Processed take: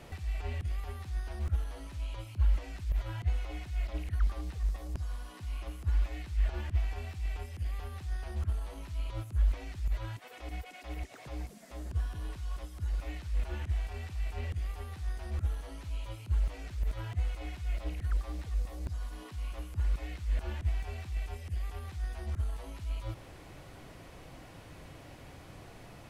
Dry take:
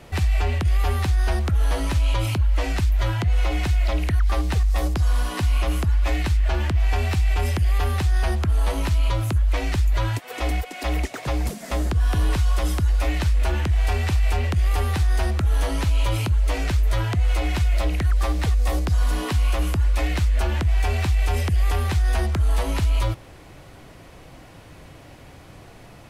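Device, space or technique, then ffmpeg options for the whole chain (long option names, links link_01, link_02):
de-esser from a sidechain: -filter_complex "[0:a]asplit=2[link_01][link_02];[link_02]highpass=frequency=4100:width=0.5412,highpass=frequency=4100:width=1.3066,apad=whole_len=1150994[link_03];[link_01][link_03]sidechaincompress=threshold=-53dB:ratio=12:attack=1.2:release=38,volume=-5dB"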